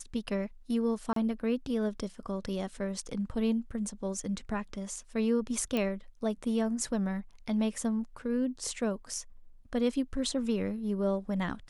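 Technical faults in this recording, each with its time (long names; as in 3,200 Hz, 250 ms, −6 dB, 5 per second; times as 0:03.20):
0:01.13–0:01.16: drop-out 33 ms
0:05.77: click −18 dBFS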